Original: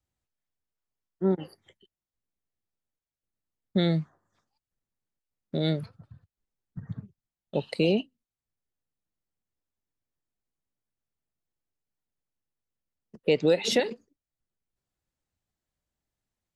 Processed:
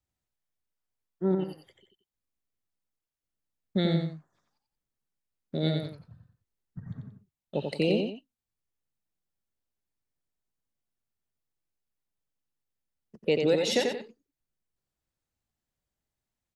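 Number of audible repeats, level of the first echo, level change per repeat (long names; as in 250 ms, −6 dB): 2, −4.5 dB, −9.5 dB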